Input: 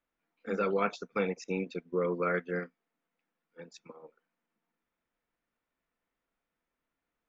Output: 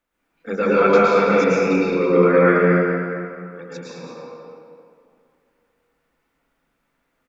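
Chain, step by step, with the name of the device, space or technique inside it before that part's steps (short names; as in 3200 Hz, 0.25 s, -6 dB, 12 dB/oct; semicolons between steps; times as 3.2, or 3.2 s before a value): cave (echo 0.213 s -10 dB; reverb RT60 2.5 s, pre-delay 0.103 s, DRR -8 dB); gain +7 dB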